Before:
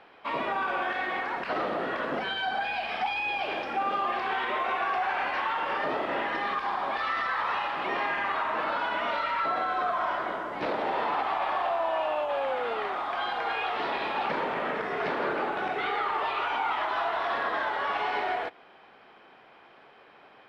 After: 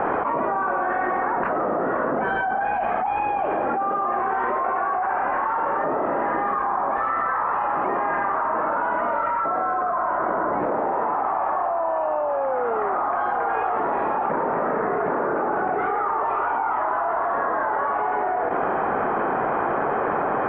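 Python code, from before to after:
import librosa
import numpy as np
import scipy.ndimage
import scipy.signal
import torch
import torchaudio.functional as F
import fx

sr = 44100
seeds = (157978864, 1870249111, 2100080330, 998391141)

y = scipy.signal.sosfilt(scipy.signal.butter(4, 1400.0, 'lowpass', fs=sr, output='sos'), x)
y = fx.env_flatten(y, sr, amount_pct=100)
y = y * 10.0 ** (2.5 / 20.0)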